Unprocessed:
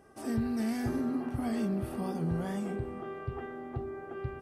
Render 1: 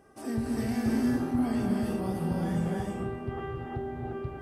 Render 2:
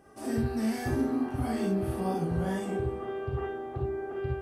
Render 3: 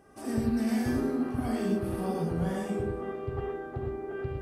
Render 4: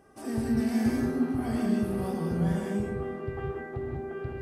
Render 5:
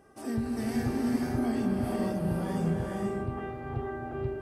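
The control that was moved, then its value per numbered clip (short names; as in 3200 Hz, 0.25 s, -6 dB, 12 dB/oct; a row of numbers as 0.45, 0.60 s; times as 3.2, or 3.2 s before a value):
non-linear reverb, gate: 360, 80, 140, 220, 530 ms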